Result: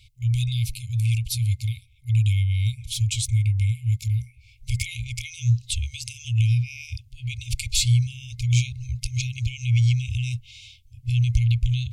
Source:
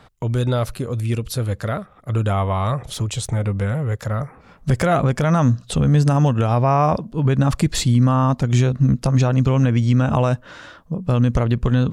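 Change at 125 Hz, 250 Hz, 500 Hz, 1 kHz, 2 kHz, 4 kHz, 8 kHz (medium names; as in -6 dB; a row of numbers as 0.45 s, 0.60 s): -4.0 dB, under -15 dB, under -40 dB, under -40 dB, -5.0 dB, +1.5 dB, +1.5 dB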